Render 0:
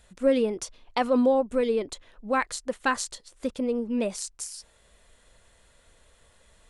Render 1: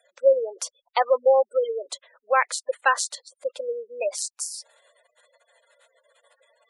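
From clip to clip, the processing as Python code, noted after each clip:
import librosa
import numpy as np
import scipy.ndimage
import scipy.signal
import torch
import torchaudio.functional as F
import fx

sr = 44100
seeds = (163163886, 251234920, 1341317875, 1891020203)

y = fx.spec_gate(x, sr, threshold_db=-20, keep='strong')
y = scipy.signal.sosfilt(scipy.signal.ellip(4, 1.0, 70, 530.0, 'highpass', fs=sr, output='sos'), y)
y = y * librosa.db_to_amplitude(6.0)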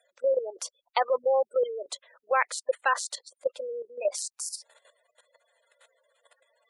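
y = fx.level_steps(x, sr, step_db=12)
y = y * librosa.db_to_amplitude(2.0)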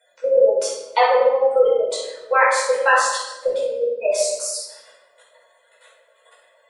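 y = fx.room_shoebox(x, sr, seeds[0], volume_m3=470.0, walls='mixed', distance_m=4.8)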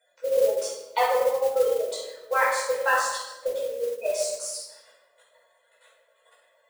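y = fx.mod_noise(x, sr, seeds[1], snr_db=20)
y = y * librosa.db_to_amplitude(-7.0)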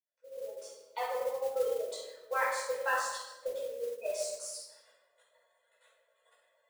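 y = fx.fade_in_head(x, sr, length_s=1.72)
y = y * librosa.db_to_amplitude(-8.5)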